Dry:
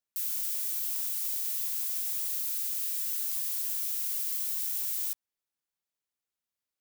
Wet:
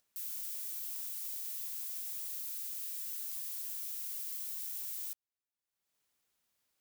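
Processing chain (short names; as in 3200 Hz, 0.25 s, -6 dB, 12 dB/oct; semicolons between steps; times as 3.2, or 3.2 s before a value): upward compressor, threshold -55 dBFS; gain -8.5 dB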